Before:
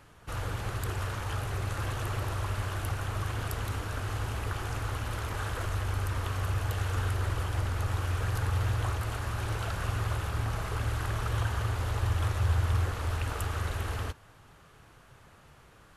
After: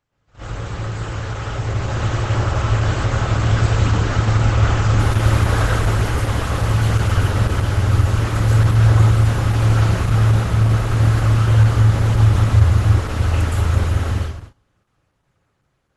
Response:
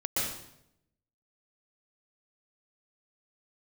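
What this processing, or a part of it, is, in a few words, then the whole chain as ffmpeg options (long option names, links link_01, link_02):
speakerphone in a meeting room: -filter_complex "[1:a]atrim=start_sample=2205[link_01];[0:a][link_01]afir=irnorm=-1:irlink=0,dynaudnorm=framelen=490:gausssize=9:maxgain=15.5dB,agate=range=-19dB:threshold=-33dB:ratio=16:detection=peak,volume=-1.5dB" -ar 48000 -c:a libopus -b:a 12k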